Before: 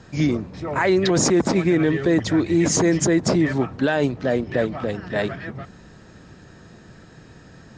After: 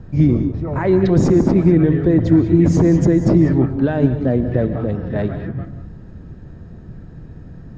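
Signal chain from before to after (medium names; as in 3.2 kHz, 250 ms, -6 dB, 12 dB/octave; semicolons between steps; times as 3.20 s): tilt EQ -4.5 dB/octave; gated-style reverb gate 220 ms rising, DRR 9 dB; trim -3.5 dB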